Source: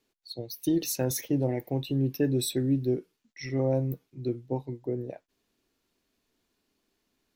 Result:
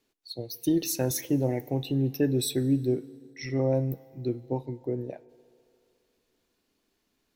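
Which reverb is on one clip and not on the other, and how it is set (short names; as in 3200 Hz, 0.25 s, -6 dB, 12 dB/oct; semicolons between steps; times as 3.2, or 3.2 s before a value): FDN reverb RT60 2.7 s, low-frequency decay 0.7×, high-frequency decay 0.65×, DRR 18.5 dB; gain +1 dB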